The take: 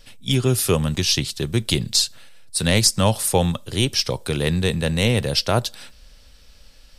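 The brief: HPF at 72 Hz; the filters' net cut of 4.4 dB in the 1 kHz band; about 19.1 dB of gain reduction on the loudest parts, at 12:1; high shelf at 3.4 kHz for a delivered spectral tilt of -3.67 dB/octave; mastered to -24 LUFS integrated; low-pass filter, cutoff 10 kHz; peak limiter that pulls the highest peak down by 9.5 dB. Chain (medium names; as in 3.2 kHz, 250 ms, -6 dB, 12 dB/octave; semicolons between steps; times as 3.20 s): high-pass 72 Hz; low-pass 10 kHz; peaking EQ 1 kHz -6.5 dB; treble shelf 3.4 kHz +6 dB; compression 12:1, threshold -28 dBFS; trim +10 dB; peak limiter -12.5 dBFS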